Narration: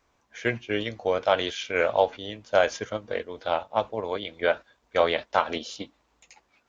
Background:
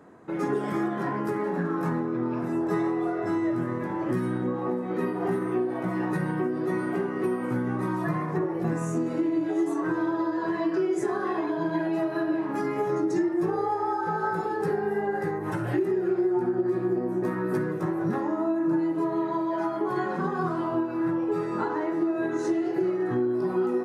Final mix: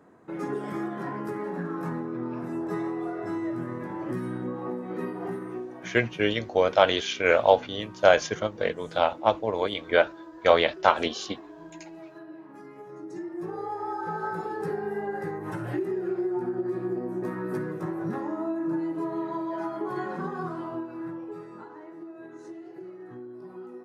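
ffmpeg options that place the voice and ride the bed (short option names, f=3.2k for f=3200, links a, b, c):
-filter_complex "[0:a]adelay=5500,volume=3dB[a];[1:a]volume=9dB,afade=t=out:st=5.05:d=0.98:silence=0.223872,afade=t=in:st=12.92:d=1.13:silence=0.211349,afade=t=out:st=20.13:d=1.52:silence=0.237137[b];[a][b]amix=inputs=2:normalize=0"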